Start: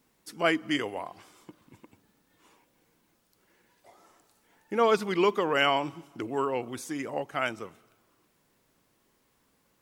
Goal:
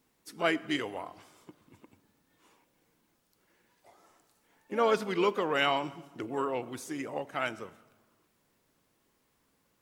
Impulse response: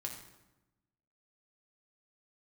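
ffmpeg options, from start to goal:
-filter_complex "[0:a]asplit=2[link_01][link_02];[link_02]asetrate=55563,aresample=44100,atempo=0.793701,volume=-14dB[link_03];[link_01][link_03]amix=inputs=2:normalize=0,asplit=2[link_04][link_05];[1:a]atrim=start_sample=2205,asetrate=33075,aresample=44100[link_06];[link_05][link_06]afir=irnorm=-1:irlink=0,volume=-14dB[link_07];[link_04][link_07]amix=inputs=2:normalize=0,volume=-4.5dB"

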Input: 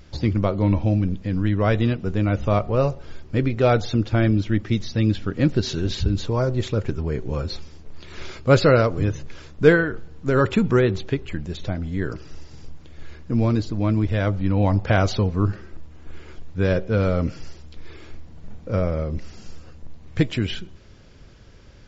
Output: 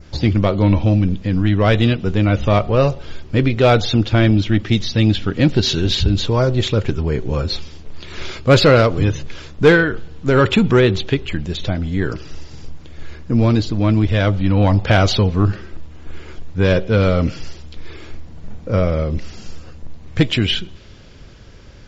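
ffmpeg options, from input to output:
ffmpeg -i in.wav -af "adynamicequalizer=threshold=0.00501:dfrequency=3300:dqfactor=1.4:tfrequency=3300:tqfactor=1.4:attack=5:release=100:ratio=0.375:range=4:mode=boostabove:tftype=bell,acontrast=88,volume=-1dB" out.wav

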